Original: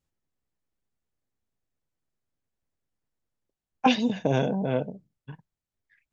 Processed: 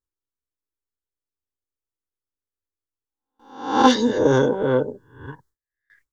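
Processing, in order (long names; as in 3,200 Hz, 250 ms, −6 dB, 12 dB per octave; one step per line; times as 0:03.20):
peak hold with a rise ahead of every peak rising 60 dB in 0.59 s
noise gate with hold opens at −54 dBFS
in parallel at −9 dB: soft clipping −16 dBFS, distortion −13 dB
on the sum: phaser with its sweep stopped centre 680 Hz, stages 6
level +8.5 dB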